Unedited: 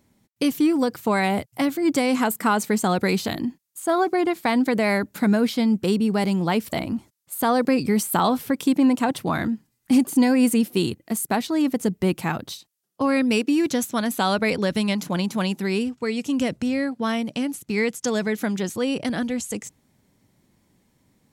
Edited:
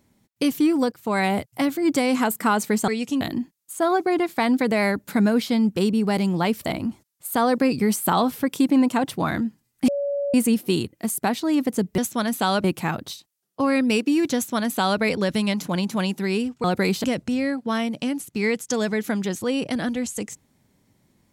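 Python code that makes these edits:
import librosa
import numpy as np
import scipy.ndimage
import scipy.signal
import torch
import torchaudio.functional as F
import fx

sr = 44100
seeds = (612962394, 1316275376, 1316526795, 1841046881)

y = fx.edit(x, sr, fx.fade_in_from(start_s=0.92, length_s=0.28, floor_db=-18.0),
    fx.swap(start_s=2.88, length_s=0.4, other_s=16.05, other_length_s=0.33),
    fx.bleep(start_s=9.95, length_s=0.46, hz=567.0, db=-22.0),
    fx.duplicate(start_s=13.76, length_s=0.66, to_s=12.05), tone=tone)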